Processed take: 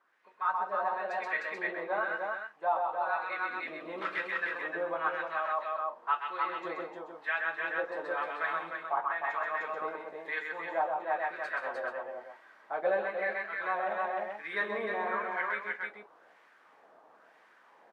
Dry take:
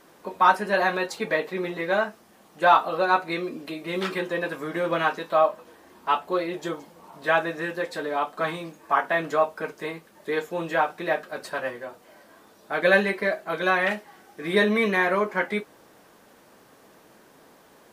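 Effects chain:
single-tap delay 129 ms −3.5 dB
auto-filter band-pass sine 0.99 Hz 690–2,000 Hz
multi-tap delay 184/305 ms −16.5/−4 dB
speech leveller within 5 dB 0.5 s
level −5 dB

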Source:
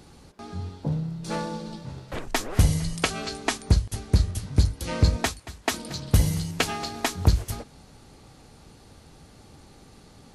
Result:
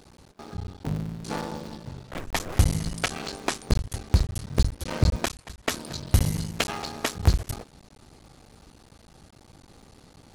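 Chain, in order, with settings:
sub-harmonics by changed cycles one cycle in 3, muted

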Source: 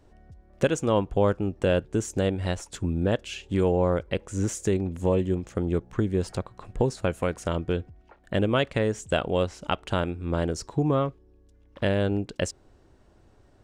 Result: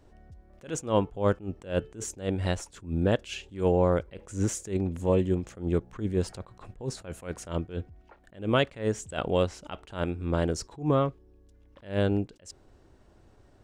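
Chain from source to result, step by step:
0:00.76–0:02.04: hum removal 436.1 Hz, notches 7
level that may rise only so fast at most 180 dB per second

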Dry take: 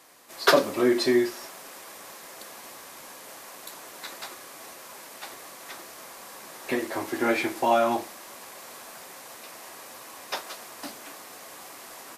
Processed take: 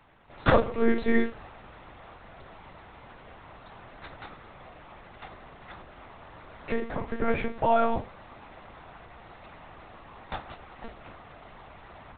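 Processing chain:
high-shelf EQ 2,600 Hz −10.5 dB
one-pitch LPC vocoder at 8 kHz 230 Hz

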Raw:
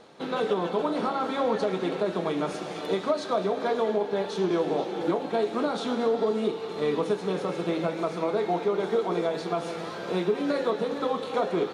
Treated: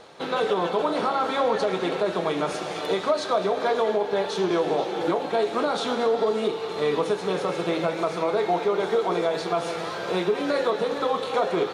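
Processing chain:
parametric band 230 Hz −8 dB 1.3 octaves
in parallel at 0 dB: brickwall limiter −21.5 dBFS, peak gain reduction 6 dB

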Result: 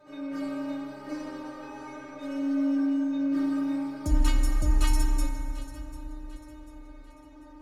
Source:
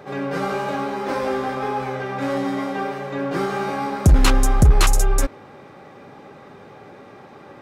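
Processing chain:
low-shelf EQ 81 Hz +11.5 dB
stiff-string resonator 300 Hz, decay 0.25 s, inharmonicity 0.002
delay that swaps between a low-pass and a high-pass 372 ms, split 950 Hz, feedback 63%, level −12 dB
feedback delay network reverb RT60 3.2 s, low-frequency decay 1.25×, high-frequency decay 0.55×, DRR 3 dB

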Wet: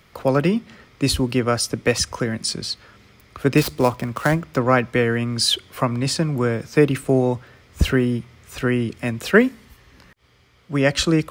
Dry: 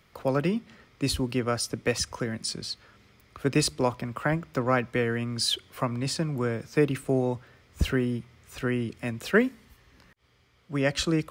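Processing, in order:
0:03.57–0:04.43: gap after every zero crossing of 0.073 ms
level +7.5 dB

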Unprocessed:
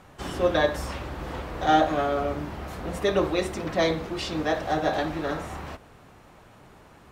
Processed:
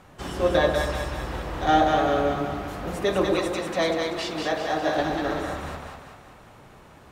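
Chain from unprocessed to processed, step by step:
0:03.34–0:04.97: low-shelf EQ 220 Hz −9 dB
echo with a time of its own for lows and highs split 710 Hz, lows 119 ms, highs 193 ms, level −3.5 dB

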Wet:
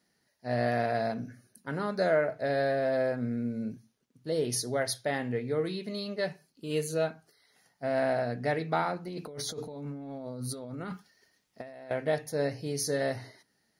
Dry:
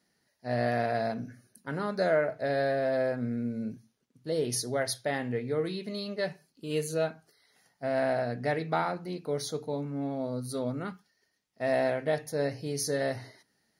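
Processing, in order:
0:09.07–0:11.91: compressor whose output falls as the input rises −40 dBFS, ratio −1

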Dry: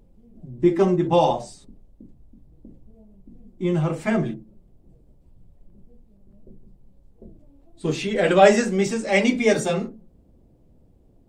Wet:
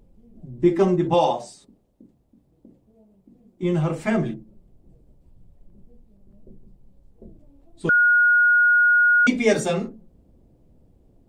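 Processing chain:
0:01.14–0:03.63: high-pass filter 280 Hz 6 dB per octave
0:07.89–0:09.27: beep over 1,440 Hz −13 dBFS

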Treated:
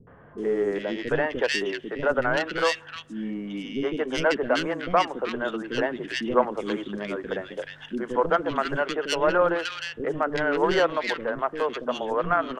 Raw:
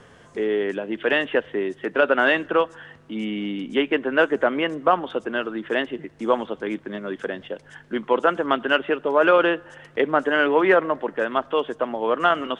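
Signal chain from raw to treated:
stylus tracing distortion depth 0.11 ms
speech leveller within 4 dB 2 s
three-band delay without the direct sound lows, mids, highs 70/380 ms, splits 350/1,800 Hz
level −2 dB

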